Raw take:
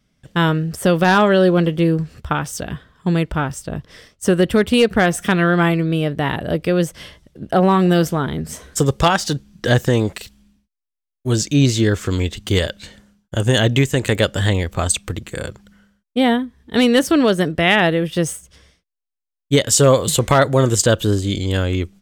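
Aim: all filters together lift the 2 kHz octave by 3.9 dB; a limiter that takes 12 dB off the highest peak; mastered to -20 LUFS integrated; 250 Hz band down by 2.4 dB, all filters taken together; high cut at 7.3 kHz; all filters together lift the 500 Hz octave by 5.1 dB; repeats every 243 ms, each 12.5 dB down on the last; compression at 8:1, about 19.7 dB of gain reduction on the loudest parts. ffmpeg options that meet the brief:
-af "lowpass=7300,equalizer=f=250:t=o:g=-6.5,equalizer=f=500:t=o:g=7.5,equalizer=f=2000:t=o:g=4.5,acompressor=threshold=0.0501:ratio=8,alimiter=limit=0.075:level=0:latency=1,aecho=1:1:243|486|729:0.237|0.0569|0.0137,volume=4.47"

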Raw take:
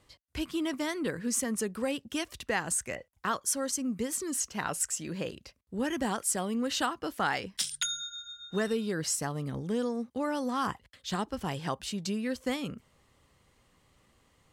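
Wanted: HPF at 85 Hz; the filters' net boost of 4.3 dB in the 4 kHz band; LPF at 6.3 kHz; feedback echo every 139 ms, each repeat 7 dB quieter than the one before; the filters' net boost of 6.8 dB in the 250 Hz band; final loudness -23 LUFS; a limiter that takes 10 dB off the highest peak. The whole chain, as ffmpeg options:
-af "highpass=85,lowpass=6300,equalizer=f=250:t=o:g=8,equalizer=f=4000:t=o:g=6,alimiter=limit=0.0631:level=0:latency=1,aecho=1:1:139|278|417|556|695:0.447|0.201|0.0905|0.0407|0.0183,volume=2.82"

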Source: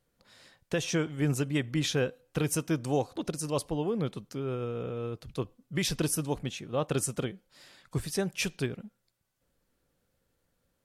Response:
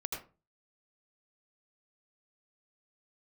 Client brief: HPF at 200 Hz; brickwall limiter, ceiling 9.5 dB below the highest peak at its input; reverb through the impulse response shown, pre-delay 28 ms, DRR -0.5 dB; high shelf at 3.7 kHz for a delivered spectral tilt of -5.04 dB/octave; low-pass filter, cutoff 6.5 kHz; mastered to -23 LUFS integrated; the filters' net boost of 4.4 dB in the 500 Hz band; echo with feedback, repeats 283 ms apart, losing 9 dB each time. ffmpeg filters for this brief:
-filter_complex "[0:a]highpass=200,lowpass=6500,equalizer=f=500:t=o:g=5.5,highshelf=f=3700:g=-6.5,alimiter=limit=0.0668:level=0:latency=1,aecho=1:1:283|566|849|1132:0.355|0.124|0.0435|0.0152,asplit=2[s0][s1];[1:a]atrim=start_sample=2205,adelay=28[s2];[s1][s2]afir=irnorm=-1:irlink=0,volume=0.841[s3];[s0][s3]amix=inputs=2:normalize=0,volume=2.51"

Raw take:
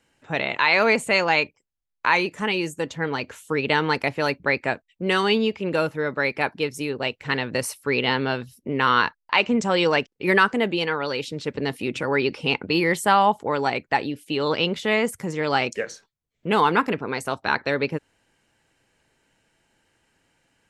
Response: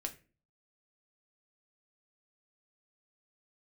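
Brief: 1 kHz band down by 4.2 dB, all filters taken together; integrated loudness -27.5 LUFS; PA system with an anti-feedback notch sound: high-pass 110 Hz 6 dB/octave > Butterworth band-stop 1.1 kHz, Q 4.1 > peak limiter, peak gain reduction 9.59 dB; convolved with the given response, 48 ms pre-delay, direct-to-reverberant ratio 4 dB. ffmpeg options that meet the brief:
-filter_complex "[0:a]equalizer=f=1000:t=o:g=-3.5,asplit=2[s0][s1];[1:a]atrim=start_sample=2205,adelay=48[s2];[s1][s2]afir=irnorm=-1:irlink=0,volume=0.708[s3];[s0][s3]amix=inputs=2:normalize=0,highpass=f=110:p=1,asuperstop=centerf=1100:order=8:qfactor=4.1,volume=0.841,alimiter=limit=0.15:level=0:latency=1"

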